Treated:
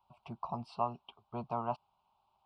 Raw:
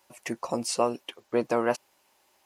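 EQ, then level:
head-to-tape spacing loss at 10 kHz 40 dB
phaser with its sweep stopped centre 730 Hz, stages 4
phaser with its sweep stopped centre 1,900 Hz, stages 6
+2.5 dB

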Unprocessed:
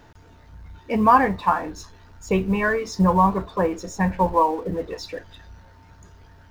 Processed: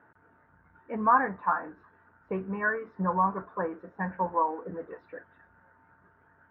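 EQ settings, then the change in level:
high-pass filter 160 Hz 12 dB per octave
transistor ladder low-pass 1,700 Hz, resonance 60%
high-frequency loss of the air 150 metres
0.0 dB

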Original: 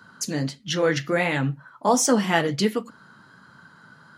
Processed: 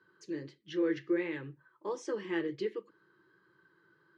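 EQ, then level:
pair of resonant band-passes 710 Hz, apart 2.1 octaves
high-frequency loss of the air 77 metres
phaser with its sweep stopped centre 590 Hz, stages 4
+6.0 dB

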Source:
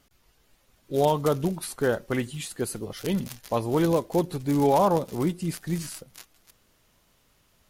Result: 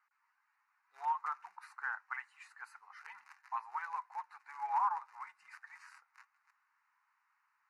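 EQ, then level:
elliptic high-pass filter 860 Hz, stop band 60 dB
low-pass filter 2,000 Hz 12 dB per octave
phaser with its sweep stopped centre 1,400 Hz, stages 4
−2.0 dB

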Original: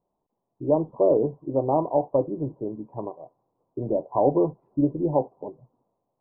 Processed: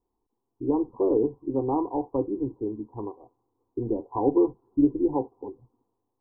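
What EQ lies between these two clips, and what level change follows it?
low-shelf EQ 310 Hz +10.5 dB
phaser with its sweep stopped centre 610 Hz, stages 6
−2.5 dB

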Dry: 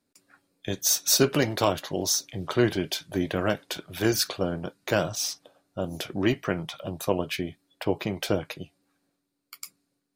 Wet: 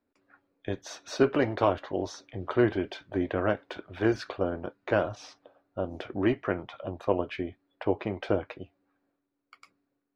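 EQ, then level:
low-pass filter 1,800 Hz 12 dB per octave
parametric band 160 Hz −14 dB 0.45 octaves
0.0 dB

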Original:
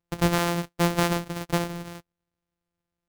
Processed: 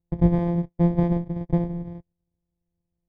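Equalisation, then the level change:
moving average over 32 samples
high-frequency loss of the air 160 metres
low-shelf EQ 190 Hz +11.5 dB
0.0 dB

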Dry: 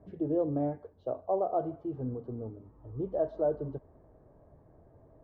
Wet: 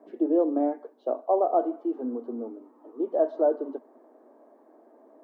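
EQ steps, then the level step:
Chebyshev high-pass with heavy ripple 230 Hz, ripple 3 dB
+8.0 dB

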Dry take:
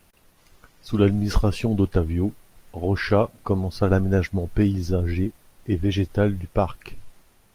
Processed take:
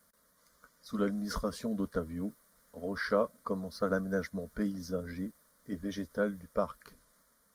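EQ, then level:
high-pass filter 52 Hz
low-shelf EQ 400 Hz −7 dB
phaser with its sweep stopped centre 530 Hz, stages 8
−4.5 dB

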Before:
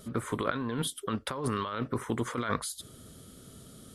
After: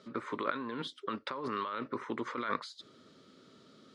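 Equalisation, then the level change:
loudspeaker in its box 330–4,600 Hz, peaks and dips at 460 Hz −4 dB, 720 Hz −9 dB, 1,600 Hz −3 dB, 3,200 Hz −7 dB
0.0 dB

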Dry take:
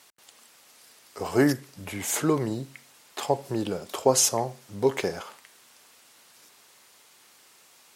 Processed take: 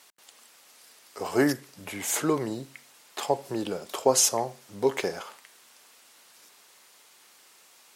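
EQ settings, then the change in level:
high-pass filter 240 Hz 6 dB per octave
0.0 dB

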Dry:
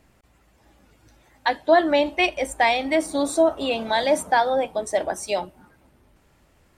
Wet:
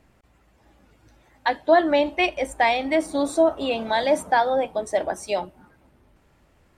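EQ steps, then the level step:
high-shelf EQ 4,100 Hz −6 dB
0.0 dB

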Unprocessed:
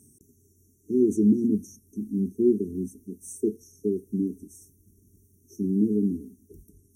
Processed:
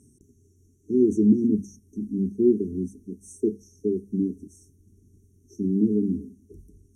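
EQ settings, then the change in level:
high-frequency loss of the air 60 metres
low-shelf EQ 66 Hz +8 dB
mains-hum notches 50/100/150/200 Hz
+1.5 dB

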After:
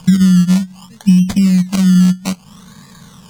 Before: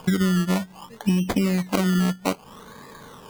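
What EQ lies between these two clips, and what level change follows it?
low shelf with overshoot 250 Hz +9 dB, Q 3
parametric band 6,400 Hz +12.5 dB 2.4 octaves
−3.5 dB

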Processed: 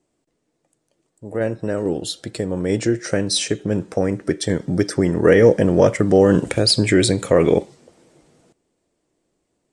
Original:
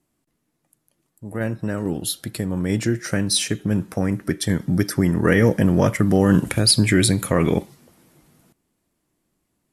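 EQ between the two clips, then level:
drawn EQ curve 220 Hz 0 dB, 480 Hz +11 dB, 1,100 Hz +1 dB, 8,500 Hz +4 dB, 12,000 Hz −21 dB
−2.0 dB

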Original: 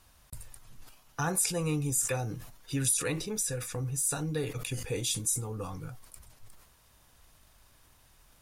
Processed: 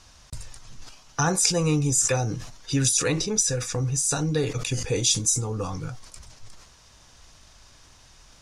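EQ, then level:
dynamic equaliser 2,800 Hz, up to −3 dB, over −48 dBFS, Q 0.76
low-pass with resonance 6,000 Hz, resonance Q 2.4
+8.0 dB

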